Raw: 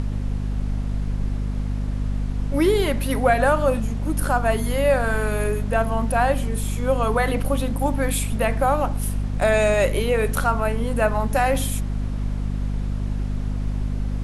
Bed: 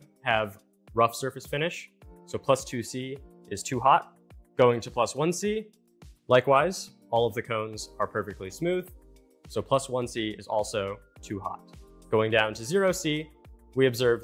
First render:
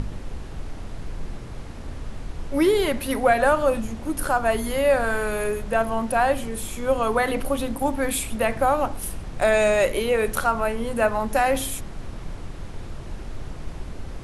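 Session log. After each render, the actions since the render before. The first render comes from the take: de-hum 50 Hz, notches 5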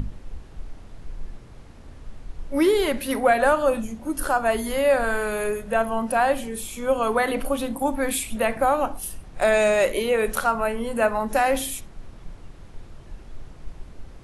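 noise print and reduce 9 dB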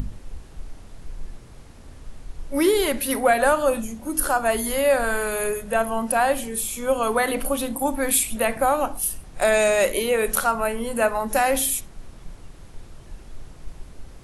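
treble shelf 6.4 kHz +11 dB; de-hum 105.4 Hz, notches 3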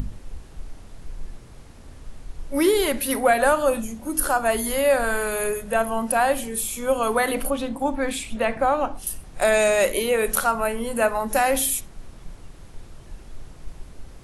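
7.50–9.07 s: distance through air 100 m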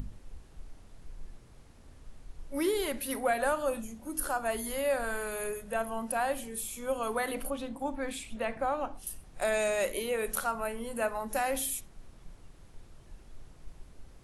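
trim -10.5 dB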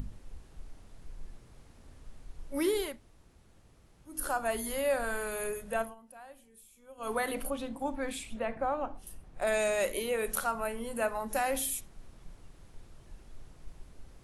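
2.89–4.15 s: room tone, crossfade 0.24 s; 5.81–7.11 s: dip -20 dB, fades 0.14 s; 8.39–9.47 s: treble shelf 2.9 kHz -10.5 dB

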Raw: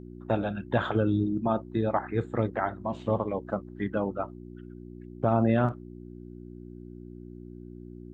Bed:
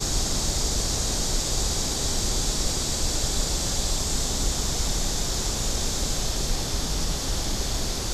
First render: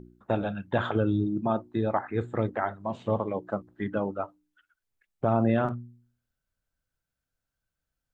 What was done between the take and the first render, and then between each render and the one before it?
de-hum 60 Hz, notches 6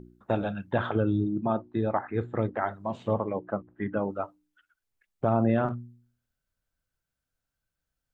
0.72–2.61 s: distance through air 150 m; 3.13–4.10 s: low-pass 2.6 kHz 24 dB/octave; 5.29–5.70 s: low-pass 2.7 kHz 6 dB/octave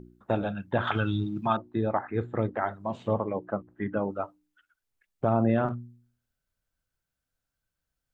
0.87–1.57 s: FFT filter 140 Hz 0 dB, 520 Hz -8 dB, 820 Hz +4 dB, 1.7 kHz +11 dB, 2.4 kHz +14 dB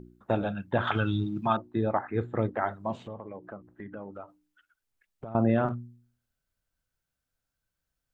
3.03–5.35 s: compression 4:1, threshold -39 dBFS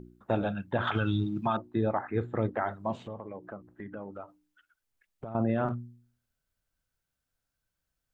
peak limiter -18 dBFS, peak gain reduction 5.5 dB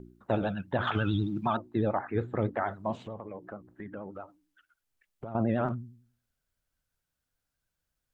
vibrato 11 Hz 80 cents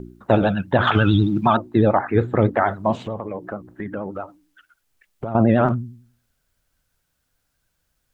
trim +12 dB

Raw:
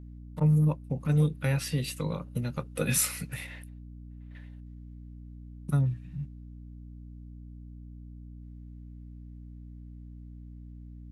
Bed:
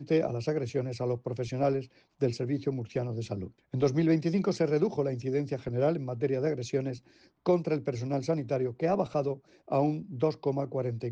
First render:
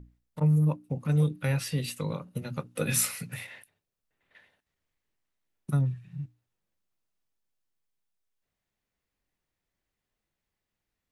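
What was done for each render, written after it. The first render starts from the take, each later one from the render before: hum notches 60/120/180/240/300 Hz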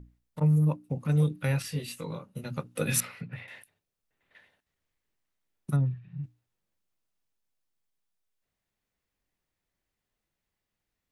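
1.62–2.44 s: detune thickener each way 13 cents; 3.00–3.48 s: distance through air 380 m; 5.76–6.24 s: distance through air 240 m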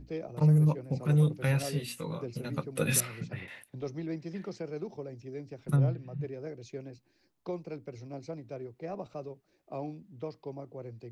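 add bed -11.5 dB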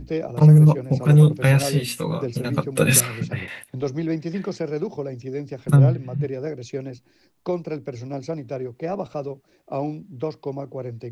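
trim +11.5 dB; peak limiter -2 dBFS, peak gain reduction 1.5 dB

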